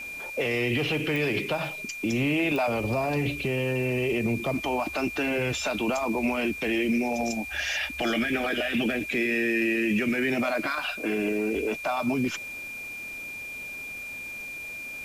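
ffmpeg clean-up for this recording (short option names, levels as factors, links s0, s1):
-af "adeclick=t=4,bandreject=f=2400:w=30,afwtdn=0.0032"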